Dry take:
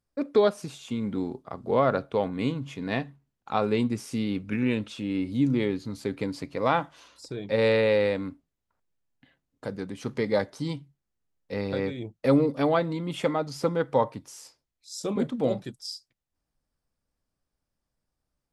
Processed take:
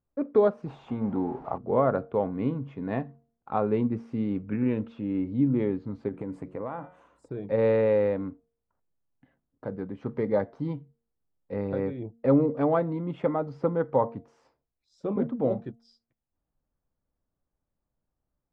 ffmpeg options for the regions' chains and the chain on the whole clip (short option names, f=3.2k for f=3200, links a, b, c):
-filter_complex "[0:a]asettb=1/sr,asplit=3[a][b][c];[a]atrim=end=0.664[d];[b]atrim=start=0.66:end=1.58,asetpts=PTS-STARTPTS,afade=t=in:d=0.004:c=qsin,afade=t=out:st=0.916:d=0.004:c=qsin,aeval=exprs='val(0)+0.5*0.00891*sgn(val(0))':c=same,equalizer=f=830:t=o:w=0.72:g=10.5[e];[c]atrim=start=1.576[f];[d][e]acrossfade=d=0.004:c1=hsin:c2=qsin[g];[g][f]acrossfade=d=0.004:c1=qsin:c2=hsin,asettb=1/sr,asplit=3[h][i][j];[h]atrim=end=6.084[k];[i]atrim=start=6.08:end=7.29,asetpts=PTS-STARTPTS,afade=t=in:d=0.004:c=qsin,afade=t=out:st=1.206:d=0.004:c=qsin,highshelf=f=6.3k:t=q:w=3:g=11.5,bandreject=f=182.4:t=h:w=4,bandreject=f=364.8:t=h:w=4,bandreject=f=547.2:t=h:w=4,bandreject=f=729.6:t=h:w=4,bandreject=f=912:t=h:w=4,bandreject=f=1.0944k:t=h:w=4,bandreject=f=1.2768k:t=h:w=4,bandreject=f=1.4592k:t=h:w=4,bandreject=f=1.6416k:t=h:w=4,bandreject=f=1.824k:t=h:w=4,bandreject=f=2.0064k:t=h:w=4,bandreject=f=2.1888k:t=h:w=4,bandreject=f=2.3712k:t=h:w=4,bandreject=f=2.5536k:t=h:w=4,bandreject=f=2.736k:t=h:w=4,bandreject=f=2.9184k:t=h:w=4,bandreject=f=3.1008k:t=h:w=4,bandreject=f=3.2832k:t=h:w=4,bandreject=f=3.4656k:t=h:w=4,bandreject=f=3.648k:t=h:w=4,bandreject=f=3.8304k:t=h:w=4,bandreject=f=4.0128k:t=h:w=4,bandreject=f=4.1952k:t=h:w=4,bandreject=f=4.3776k:t=h:w=4,bandreject=f=4.56k:t=h:w=4,bandreject=f=4.7424k:t=h:w=4,bandreject=f=4.9248k:t=h:w=4,bandreject=f=5.1072k:t=h:w=4,bandreject=f=5.2896k:t=h:w=4,bandreject=f=5.472k:t=h:w=4,bandreject=f=5.6544k:t=h:w=4,bandreject=f=5.8368k:t=h:w=4,acompressor=threshold=-29dB:ratio=6:attack=3.2:release=140:knee=1:detection=peak[l];[j]atrim=start=7.286[m];[k][l]acrossfade=d=0.004:c1=hsin:c2=qsin[n];[n][m]acrossfade=d=0.004:c1=qsin:c2=hsin,lowpass=1.2k,bandreject=f=231.2:t=h:w=4,bandreject=f=462.4:t=h:w=4,bandreject=f=693.6:t=h:w=4"